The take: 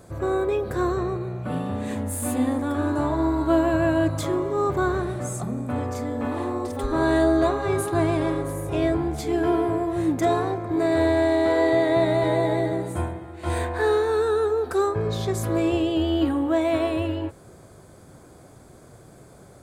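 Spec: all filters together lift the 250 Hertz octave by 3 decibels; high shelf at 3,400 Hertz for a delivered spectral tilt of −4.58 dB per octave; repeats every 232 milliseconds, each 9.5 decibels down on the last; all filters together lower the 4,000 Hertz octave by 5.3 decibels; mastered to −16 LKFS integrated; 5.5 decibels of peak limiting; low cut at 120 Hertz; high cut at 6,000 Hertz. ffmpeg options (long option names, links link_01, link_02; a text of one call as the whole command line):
ffmpeg -i in.wav -af "highpass=120,lowpass=6000,equalizer=frequency=250:width_type=o:gain=4.5,highshelf=frequency=3400:gain=4.5,equalizer=frequency=4000:width_type=o:gain=-9,alimiter=limit=-14dB:level=0:latency=1,aecho=1:1:232|464|696|928:0.335|0.111|0.0365|0.012,volume=7dB" out.wav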